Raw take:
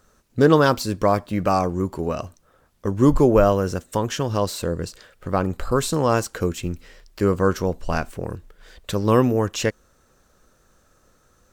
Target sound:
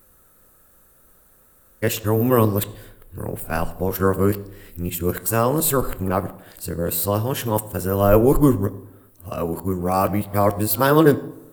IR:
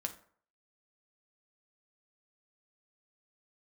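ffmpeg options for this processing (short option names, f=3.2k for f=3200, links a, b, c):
-filter_complex "[0:a]areverse,aexciter=amount=12.7:drive=4.3:freq=8.6k,asplit=2[a][b];[1:a]atrim=start_sample=2205,asetrate=23814,aresample=44100,lowpass=5.3k[c];[b][c]afir=irnorm=-1:irlink=0,volume=-6dB[d];[a][d]amix=inputs=2:normalize=0,volume=-4dB"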